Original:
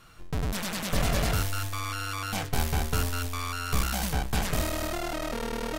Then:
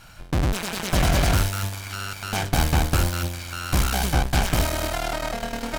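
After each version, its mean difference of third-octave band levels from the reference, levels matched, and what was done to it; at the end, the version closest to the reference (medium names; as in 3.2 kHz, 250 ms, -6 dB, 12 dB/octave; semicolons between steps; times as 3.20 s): 3.0 dB: comb filter that takes the minimum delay 1.3 ms; loudspeaker Doppler distortion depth 0.12 ms; trim +8.5 dB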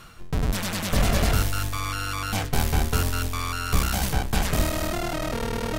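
1.5 dB: octave divider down 1 oct, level -2 dB; reverse; upward compressor, threshold -33 dBFS; reverse; trim +3.5 dB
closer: second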